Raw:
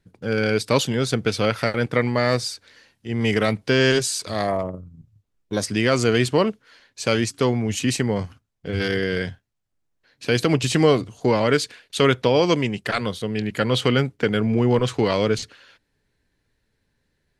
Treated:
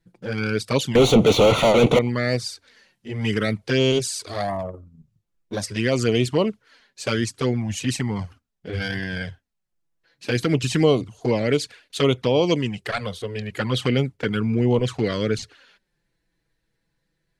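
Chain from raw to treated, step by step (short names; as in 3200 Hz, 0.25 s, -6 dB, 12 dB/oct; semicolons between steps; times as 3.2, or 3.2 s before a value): 0.95–1.99 overdrive pedal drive 38 dB, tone 1500 Hz, clips at -4 dBFS; envelope flanger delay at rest 6.1 ms, full sweep at -13.5 dBFS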